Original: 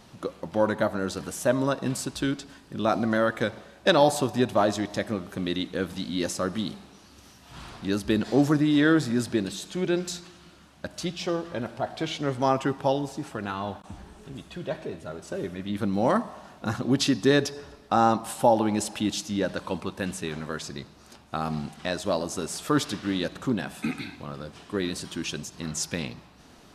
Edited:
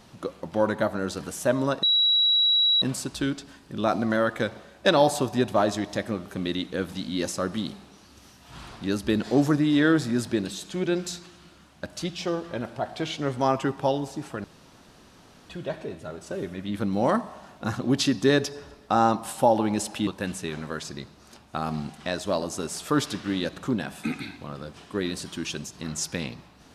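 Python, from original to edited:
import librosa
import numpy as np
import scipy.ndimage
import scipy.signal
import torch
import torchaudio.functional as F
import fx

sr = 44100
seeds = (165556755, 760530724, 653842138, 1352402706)

y = fx.edit(x, sr, fx.insert_tone(at_s=1.83, length_s=0.99, hz=3890.0, db=-17.5),
    fx.room_tone_fill(start_s=13.45, length_s=1.05),
    fx.cut(start_s=19.08, length_s=0.78), tone=tone)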